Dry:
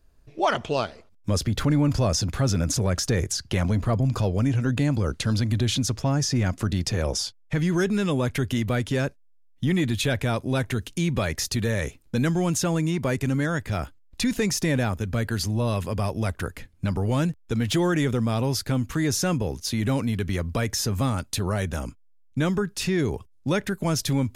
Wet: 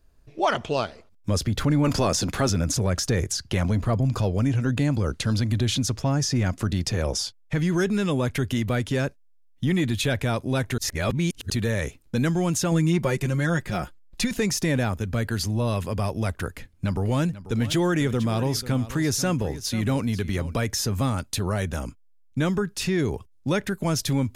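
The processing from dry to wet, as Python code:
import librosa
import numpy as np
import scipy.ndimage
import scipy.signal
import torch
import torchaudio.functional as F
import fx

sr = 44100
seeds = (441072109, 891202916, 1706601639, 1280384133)

y = fx.spec_clip(x, sr, under_db=13, at=(1.83, 2.49), fade=0.02)
y = fx.comb(y, sr, ms=5.6, depth=0.65, at=(12.71, 14.31))
y = fx.echo_single(y, sr, ms=490, db=-15.0, at=(17.03, 20.53), fade=0.02)
y = fx.edit(y, sr, fx.reverse_span(start_s=10.78, length_s=0.72), tone=tone)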